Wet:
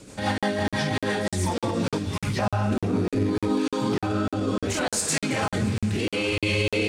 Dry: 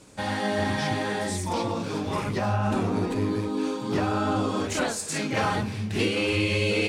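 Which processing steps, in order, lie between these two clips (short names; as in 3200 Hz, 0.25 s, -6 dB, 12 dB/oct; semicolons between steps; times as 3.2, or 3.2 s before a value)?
1.98–2.39 bell 650 Hz -14.5 dB 2.7 oct; limiter -23 dBFS, peak gain reduction 10 dB; rotary speaker horn 6 Hz, later 0.7 Hz, at 1.42; thinning echo 0.226 s, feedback 77%, level -17.5 dB; crackling interface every 0.30 s, samples 2048, zero, from 0.38; gain +8.5 dB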